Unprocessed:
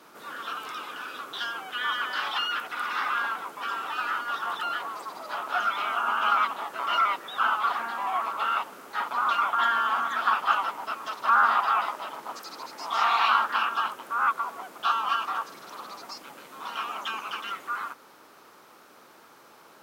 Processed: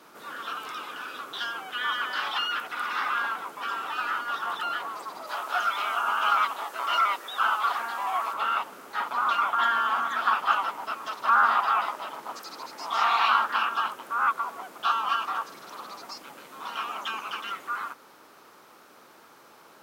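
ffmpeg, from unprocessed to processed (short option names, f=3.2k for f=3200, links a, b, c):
-filter_complex "[0:a]asettb=1/sr,asplit=3[a][b][c];[a]atrim=end=5.274[d];[b]atrim=start=5.27:end=8.34,asetpts=PTS-STARTPTS,afade=t=in:d=0.004:c=qsin,afade=t=out:st=3.066:d=0.004:c=qsin,bass=f=250:g=-10,treble=f=4k:g=5[e];[c]atrim=start=8.336[f];[d][e]acrossfade=d=0.004:c1=hsin:c2=qsin[g];[g][f]acrossfade=d=0.004:c1=qsin:c2=hsin"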